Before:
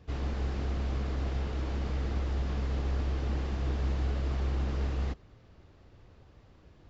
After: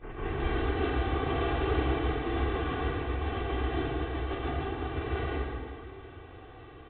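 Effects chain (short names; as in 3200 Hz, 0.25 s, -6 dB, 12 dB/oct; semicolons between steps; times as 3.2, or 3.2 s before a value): tape start at the beginning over 0.35 s; grains 0.1 s, grains 20/s; negative-ratio compressor -34 dBFS, ratio -0.5; low shelf 67 Hz -11 dB; comb 2.6 ms, depth 72%; downsampling 8000 Hz; low shelf 230 Hz -5.5 dB; pre-echo 0.269 s -19.5 dB; plate-style reverb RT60 2 s, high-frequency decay 0.75×, pre-delay 0.12 s, DRR -10 dB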